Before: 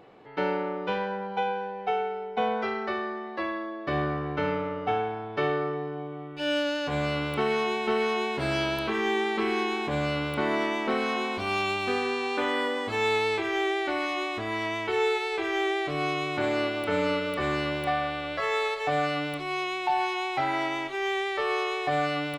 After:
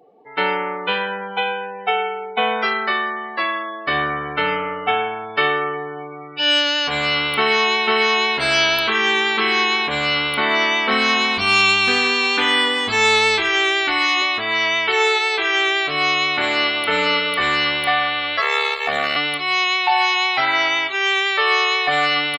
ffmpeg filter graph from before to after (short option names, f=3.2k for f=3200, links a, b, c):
-filter_complex "[0:a]asettb=1/sr,asplit=3[a][b][c];[a]atrim=end=10.914[d];[b]atrim=start=10.91:end=14.22,asetpts=PTS-STARTPTS,afade=t=in:d=0.004:c=qsin,afade=t=out:st=3.306:d=0.004:c=qsin,bass=f=250:g=9,treble=f=4k:g=2,bandreject=f=570:w=6[e];[c]atrim=start=14.216[f];[d][e]acrossfade=d=0.004:c1=hsin:c2=qsin[g];[g][f]acrossfade=d=0.004:c1=qsin:c2=hsin,asettb=1/sr,asplit=3[h][i][j];[h]atrim=end=18.414[k];[i]atrim=start=18.41:end=19.16,asetpts=PTS-STARTPTS,afade=t=in:d=0.004:c=qsin,afade=t=out:st=0.746:d=0.004:c=qsin,aeval=exprs='val(0)*sin(2*PI*36*n/s)':c=same,acrusher=bits=8:dc=4:mix=0:aa=0.000001[l];[j]atrim=start=19.156[m];[k][l]acrossfade=d=0.004:c1=hsin:c2=qsin[n];[n][m]acrossfade=d=0.004:c1=qsin:c2=hsin,afftdn=nr=31:nf=-47,tiltshelf=f=970:g=-9.5,aecho=1:1:4.4:0.32,volume=8.5dB"